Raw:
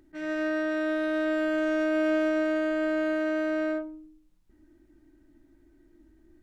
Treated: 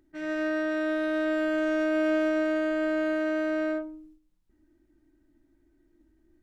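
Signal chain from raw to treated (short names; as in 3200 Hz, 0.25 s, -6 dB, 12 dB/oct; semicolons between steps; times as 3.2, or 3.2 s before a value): gate -54 dBFS, range -6 dB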